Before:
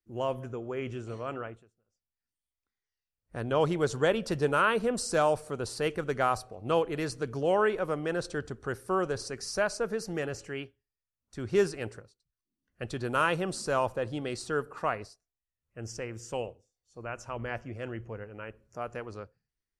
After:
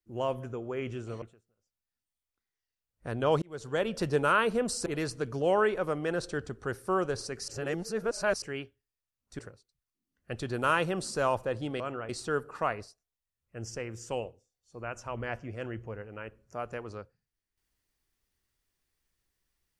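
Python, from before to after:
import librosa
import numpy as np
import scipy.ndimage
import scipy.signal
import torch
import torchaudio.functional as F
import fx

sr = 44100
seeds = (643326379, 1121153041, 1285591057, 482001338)

y = fx.edit(x, sr, fx.move(start_s=1.22, length_s=0.29, to_s=14.31),
    fx.fade_in_span(start_s=3.71, length_s=0.59),
    fx.cut(start_s=5.15, length_s=1.72),
    fx.reverse_span(start_s=9.49, length_s=0.94),
    fx.cut(start_s=11.4, length_s=0.5), tone=tone)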